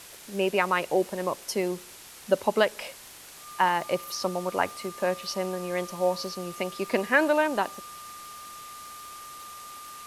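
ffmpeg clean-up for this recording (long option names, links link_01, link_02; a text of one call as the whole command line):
ffmpeg -i in.wav -af "adeclick=threshold=4,bandreject=frequency=1200:width=30,afwtdn=0.0056" out.wav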